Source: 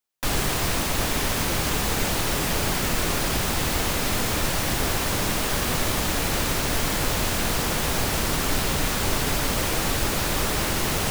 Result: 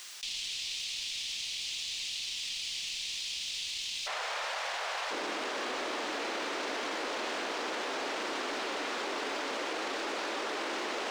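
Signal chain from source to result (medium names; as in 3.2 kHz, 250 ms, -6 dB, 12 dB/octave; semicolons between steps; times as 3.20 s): tracing distortion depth 0.038 ms; inverse Chebyshev high-pass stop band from 1.5 kHz, stop band 40 dB, from 4.06 s stop band from 290 Hz, from 5.10 s stop band from 150 Hz; peak limiter -26.5 dBFS, peak gain reduction 12 dB; companded quantiser 6-bit; added noise violet -56 dBFS; distance through air 130 m; level flattener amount 70%; trim +2 dB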